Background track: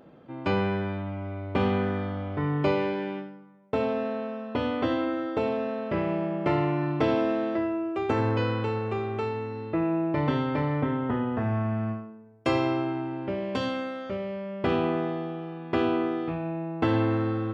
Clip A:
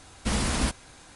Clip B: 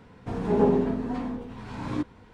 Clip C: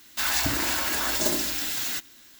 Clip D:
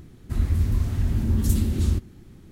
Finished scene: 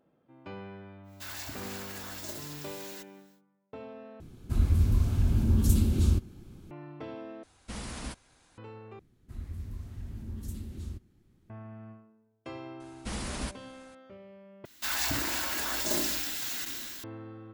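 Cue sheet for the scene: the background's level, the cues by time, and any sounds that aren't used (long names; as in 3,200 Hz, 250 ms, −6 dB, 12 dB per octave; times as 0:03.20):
background track −17.5 dB
0:01.03: mix in C −16 dB, fades 0.10 s
0:04.20: overwrite with D −2 dB + notch filter 1,900 Hz, Q 5.2
0:07.43: overwrite with A −13 dB
0:08.99: overwrite with D −17.5 dB
0:12.80: mix in A −9.5 dB
0:14.65: overwrite with C −6 dB + level that may fall only so fast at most 21 dB per second
not used: B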